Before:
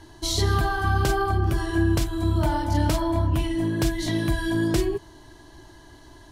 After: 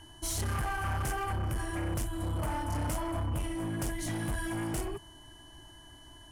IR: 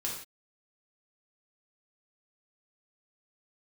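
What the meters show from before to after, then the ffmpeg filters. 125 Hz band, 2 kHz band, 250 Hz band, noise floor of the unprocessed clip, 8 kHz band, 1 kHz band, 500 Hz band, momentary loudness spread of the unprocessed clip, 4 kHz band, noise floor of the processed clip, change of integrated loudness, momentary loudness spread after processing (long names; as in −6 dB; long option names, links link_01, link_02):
−10.0 dB, −8.5 dB, −12.0 dB, −49 dBFS, −4.0 dB, −8.5 dB, −12.0 dB, 3 LU, −12.0 dB, −53 dBFS, −10.0 dB, 19 LU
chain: -af "volume=24dB,asoftclip=hard,volume=-24dB,aeval=exprs='val(0)+0.00501*sin(2*PI*3000*n/s)':channel_layout=same,equalizer=frequency=400:width_type=o:width=0.67:gain=-7,equalizer=frequency=4000:width_type=o:width=0.67:gain=-11,equalizer=frequency=10000:width_type=o:width=0.67:gain=9,volume=-5dB"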